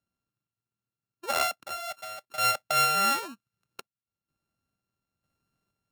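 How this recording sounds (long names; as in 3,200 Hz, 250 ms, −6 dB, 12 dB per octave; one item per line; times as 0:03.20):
a buzz of ramps at a fixed pitch in blocks of 32 samples
sample-and-hold tremolo 2.1 Hz, depth 80%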